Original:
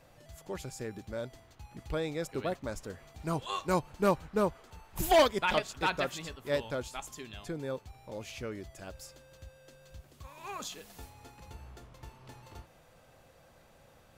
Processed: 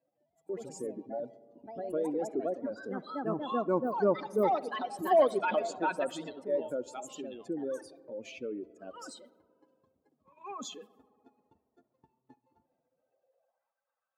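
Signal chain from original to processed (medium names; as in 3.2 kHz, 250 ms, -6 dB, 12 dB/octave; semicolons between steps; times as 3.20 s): spectral contrast enhancement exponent 2.1; high-pass 110 Hz 6 dB/octave; gate -50 dBFS, range -18 dB; filtered feedback delay 69 ms, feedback 85%, low-pass 2.4 kHz, level -22 dB; ever faster or slower copies 155 ms, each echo +3 st, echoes 2, each echo -6 dB; high-pass sweep 270 Hz -> 1.2 kHz, 12.96–13.77 s; trim -1.5 dB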